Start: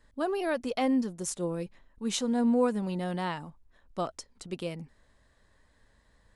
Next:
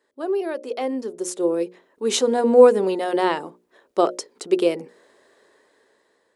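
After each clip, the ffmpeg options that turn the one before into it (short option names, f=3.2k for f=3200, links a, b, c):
-af "dynaudnorm=f=420:g=7:m=14.5dB,highpass=f=390:t=q:w=4,bandreject=f=60:t=h:w=6,bandreject=f=120:t=h:w=6,bandreject=f=180:t=h:w=6,bandreject=f=240:t=h:w=6,bandreject=f=300:t=h:w=6,bandreject=f=360:t=h:w=6,bandreject=f=420:t=h:w=6,bandreject=f=480:t=h:w=6,bandreject=f=540:t=h:w=6,bandreject=f=600:t=h:w=6,volume=-3dB"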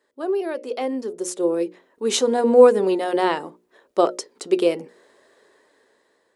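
-af "flanger=delay=1.5:depth=2.8:regen=89:speed=0.76:shape=triangular,volume=5dB"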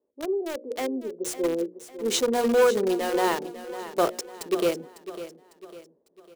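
-filter_complex "[0:a]acrossover=split=720[a][b];[a]asoftclip=type=hard:threshold=-16dB[c];[b]acrusher=bits=4:mix=0:aa=0.000001[d];[c][d]amix=inputs=2:normalize=0,aecho=1:1:551|1102|1653|2204:0.211|0.0888|0.0373|0.0157,volume=-3.5dB"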